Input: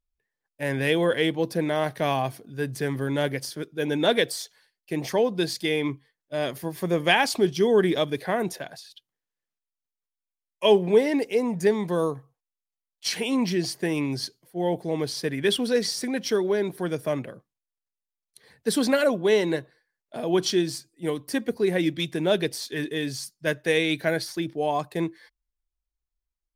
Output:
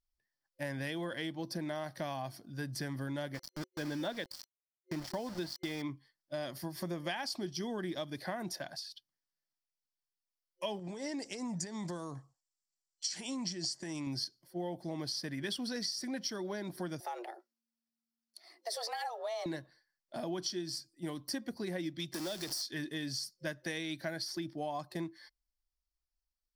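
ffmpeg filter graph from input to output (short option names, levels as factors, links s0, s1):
-filter_complex "[0:a]asettb=1/sr,asplit=3[s0][s1][s2];[s0]atrim=end=3.344[s3];[s1]atrim=start=3.34:end=5.82,asetpts=PTS-STARTPTS,afade=t=in:d=0.004:c=qsin,afade=t=out:st=2.476:d=0.004:c=qsin,aemphasis=mode=reproduction:type=50fm,aeval=exprs='val(0)*gte(abs(val(0)),0.0224)':c=same[s4];[s2]atrim=start=5.816[s5];[s3][s4]acrossfade=d=0.004:c1=hsin:c2=qsin[s6];[s6][s5]acrossfade=d=0.004:c1=qsin:c2=hsin,asettb=1/sr,asplit=3[s7][s8][s9];[s7]atrim=end=10.794[s10];[s8]atrim=start=10.79:end=14.07,asetpts=PTS-STARTPTS,afade=t=in:d=0.004:c=qsin,afade=t=out:st=3.276:d=0.004:c=qsin,acompressor=threshold=0.0447:ratio=16:attack=3.2:release=140:knee=1:detection=peak,lowpass=f=7500:t=q:w=6.8[s11];[s9]atrim=start=14.066[s12];[s10][s11]acrossfade=d=0.004:c1=hsin:c2=qsin[s13];[s13][s12]acrossfade=d=0.004:c1=qsin:c2=hsin,asettb=1/sr,asplit=3[s14][s15][s16];[s14]atrim=end=17.004[s17];[s15]atrim=start=17:end=19.46,asetpts=PTS-STARTPTS,afade=t=in:d=0.004:c=qsin,afade=t=out:st=2.456:d=0.004:c=qsin,acompressor=threshold=0.0316:ratio=2.5:attack=3.2:release=140:knee=1:detection=peak,afreqshift=230[s18];[s16]atrim=start=19.456[s19];[s17][s18]acrossfade=d=0.004:c1=hsin:c2=qsin[s20];[s20][s19]acrossfade=d=0.004:c1=qsin:c2=hsin,asettb=1/sr,asplit=3[s21][s22][s23];[s21]atrim=end=22.144[s24];[s22]atrim=start=22.14:end=22.62,asetpts=PTS-STARTPTS,afade=t=in:d=0.004:c=qsin,afade=t=out:st=0.476:d=0.004:c=qsin,aeval=exprs='val(0)+0.5*0.0447*sgn(val(0))':c=same,bass=f=250:g=-10,treble=f=4000:g=9,acrossover=split=170|400|1700[s25][s26][s27][s28];[s25]acompressor=threshold=0.00398:ratio=3[s29];[s26]acompressor=threshold=0.02:ratio=3[s30];[s27]acompressor=threshold=0.0141:ratio=3[s31];[s28]acompressor=threshold=0.0178:ratio=3[s32];[s29][s30][s31][s32]amix=inputs=4:normalize=0[s33];[s23]atrim=start=22.616[s34];[s24][s33]acrossfade=d=0.004:c1=hsin:c2=qsin[s35];[s35][s34]acrossfade=d=0.004:c1=qsin:c2=hsin,superequalizer=7b=0.316:12b=0.631:14b=2.51,acompressor=threshold=0.0316:ratio=6,volume=0.562"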